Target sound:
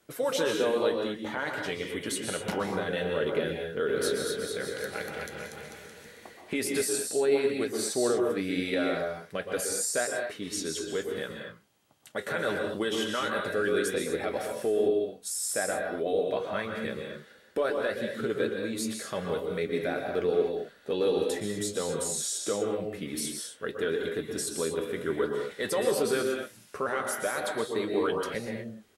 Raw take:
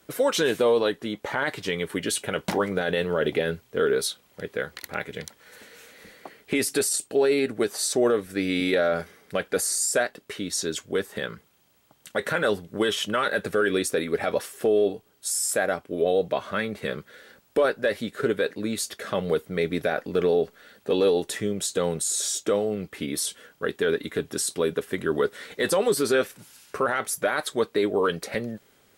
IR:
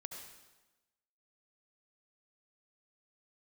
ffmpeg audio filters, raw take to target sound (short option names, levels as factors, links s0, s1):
-filter_complex "[0:a]flanger=delay=8.2:depth=4.6:regen=-66:speed=0.5:shape=sinusoidal,asplit=3[s0][s1][s2];[s0]afade=t=out:st=3.87:d=0.02[s3];[s1]aecho=1:1:240|444|617.4|764.8|890.1:0.631|0.398|0.251|0.158|0.1,afade=t=in:st=3.87:d=0.02,afade=t=out:st=6.4:d=0.02[s4];[s2]afade=t=in:st=6.4:d=0.02[s5];[s3][s4][s5]amix=inputs=3:normalize=0[s6];[1:a]atrim=start_sample=2205,atrim=end_sample=6615,asetrate=25578,aresample=44100[s7];[s6][s7]afir=irnorm=-1:irlink=0"